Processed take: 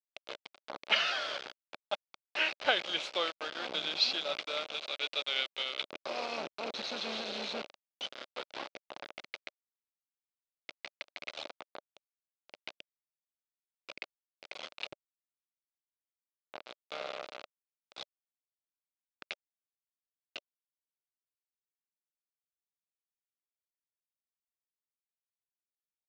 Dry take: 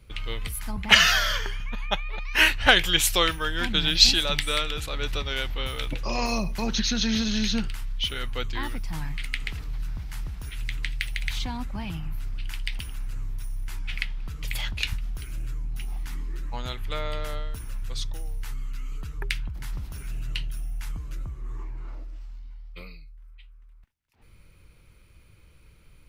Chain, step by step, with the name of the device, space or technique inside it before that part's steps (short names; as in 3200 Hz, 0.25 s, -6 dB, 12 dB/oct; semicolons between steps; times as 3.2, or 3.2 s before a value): 4.74–5.82 weighting filter D; hand-held game console (bit-crush 4-bit; speaker cabinet 440–4200 Hz, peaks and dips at 590 Hz +6 dB, 1000 Hz -4 dB, 1800 Hz -9 dB, 3100 Hz -3 dB); gain -8.5 dB